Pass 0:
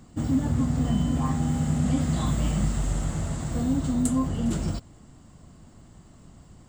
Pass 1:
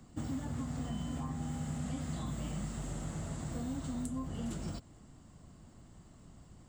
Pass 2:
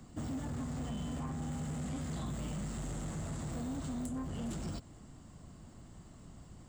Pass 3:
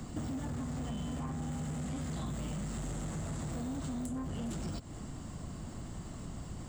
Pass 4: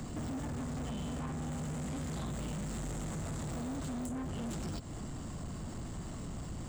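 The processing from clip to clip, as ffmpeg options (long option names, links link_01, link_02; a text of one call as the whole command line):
ffmpeg -i in.wav -filter_complex "[0:a]acrossover=split=120|600[link_01][link_02][link_03];[link_01]acompressor=threshold=-38dB:ratio=4[link_04];[link_02]acompressor=threshold=-33dB:ratio=4[link_05];[link_03]acompressor=threshold=-42dB:ratio=4[link_06];[link_04][link_05][link_06]amix=inputs=3:normalize=0,volume=-6dB" out.wav
ffmpeg -i in.wav -af "asoftclip=type=tanh:threshold=-37dB,volume=3dB" out.wav
ffmpeg -i in.wav -af "acompressor=threshold=-47dB:ratio=6,volume=10.5dB" out.wav
ffmpeg -i in.wav -af "asoftclip=type=tanh:threshold=-39.5dB,volume=4dB" out.wav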